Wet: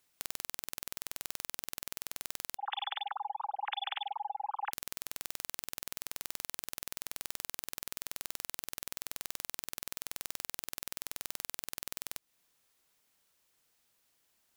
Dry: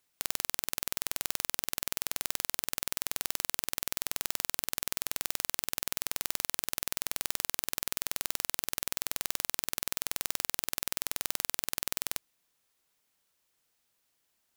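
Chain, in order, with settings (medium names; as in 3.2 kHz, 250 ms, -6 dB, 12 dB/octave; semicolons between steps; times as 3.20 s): 2.57–4.73 s: formants replaced by sine waves; compression 4:1, threshold -36 dBFS, peak gain reduction 9.5 dB; trim +2 dB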